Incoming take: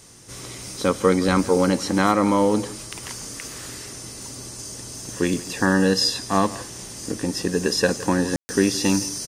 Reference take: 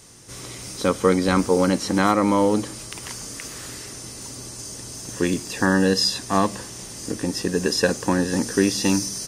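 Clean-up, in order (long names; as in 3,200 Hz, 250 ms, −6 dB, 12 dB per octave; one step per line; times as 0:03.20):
ambience match 0:08.36–0:08.49
echo removal 164 ms −18 dB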